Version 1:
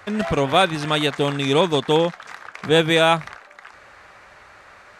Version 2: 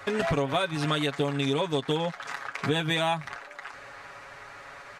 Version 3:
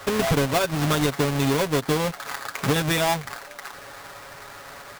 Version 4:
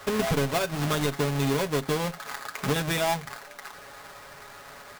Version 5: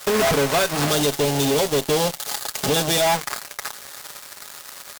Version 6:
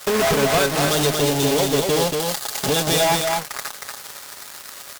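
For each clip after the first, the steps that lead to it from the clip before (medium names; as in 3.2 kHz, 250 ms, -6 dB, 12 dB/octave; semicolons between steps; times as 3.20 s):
comb 7.2 ms, depth 69%; compression 10:1, threshold -23 dBFS, peak gain reduction 14 dB
square wave that keeps the level
reverberation, pre-delay 5 ms, DRR 12 dB; trim -4.5 dB
time-frequency box 0.90–3.06 s, 890–2700 Hz -8 dB; tone controls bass -9 dB, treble +7 dB; fuzz box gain 31 dB, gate -41 dBFS; trim -3 dB
delay 234 ms -4 dB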